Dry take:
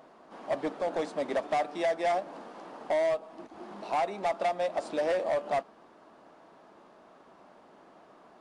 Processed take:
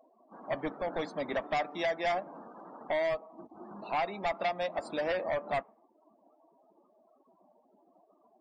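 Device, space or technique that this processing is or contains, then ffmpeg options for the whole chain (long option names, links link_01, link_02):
smiley-face EQ: -af "afftdn=noise_reduction=35:noise_floor=-47,lowshelf=frequency=110:gain=6,equalizer=frequency=480:width_type=o:width=2.9:gain=-9,highshelf=frequency=6900:gain=4,volume=4.5dB"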